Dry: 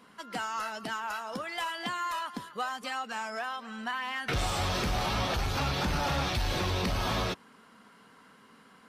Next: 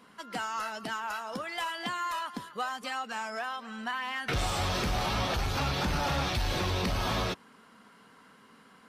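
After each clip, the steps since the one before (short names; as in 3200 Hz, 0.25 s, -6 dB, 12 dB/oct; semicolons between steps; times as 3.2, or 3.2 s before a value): nothing audible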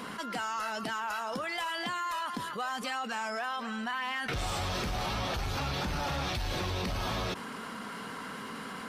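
fast leveller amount 70%; gain -5 dB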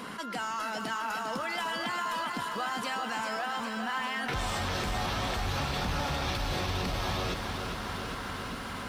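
lo-fi delay 0.402 s, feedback 80%, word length 10-bit, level -7 dB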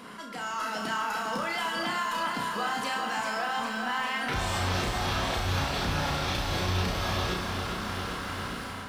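AGC gain up to 6.5 dB; flutter echo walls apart 5.7 m, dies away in 0.42 s; gain -5.5 dB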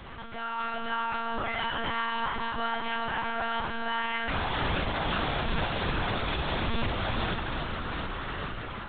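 added noise pink -47 dBFS; monotone LPC vocoder at 8 kHz 230 Hz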